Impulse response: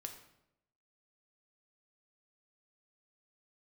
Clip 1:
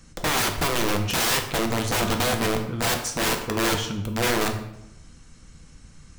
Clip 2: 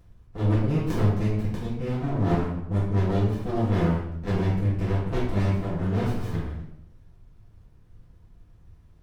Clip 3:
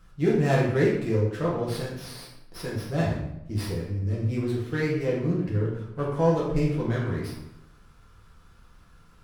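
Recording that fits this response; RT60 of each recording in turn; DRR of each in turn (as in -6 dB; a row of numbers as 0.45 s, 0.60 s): 1; 0.80 s, 0.80 s, 0.80 s; 4.0 dB, -10.5 dB, -5.5 dB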